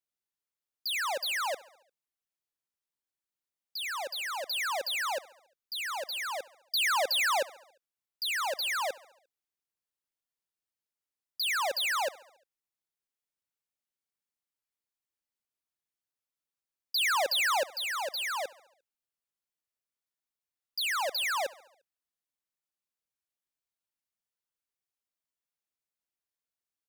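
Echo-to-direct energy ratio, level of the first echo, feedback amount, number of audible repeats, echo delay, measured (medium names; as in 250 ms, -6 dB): -19.0 dB, -21.0 dB, 58%, 3, 70 ms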